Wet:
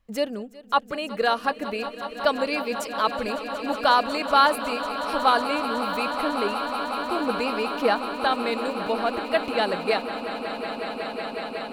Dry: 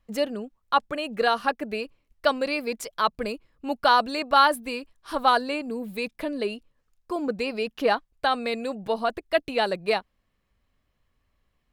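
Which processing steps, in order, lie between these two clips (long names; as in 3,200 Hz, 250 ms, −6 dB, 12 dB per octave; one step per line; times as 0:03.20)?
echo that builds up and dies away 184 ms, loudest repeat 8, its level −15 dB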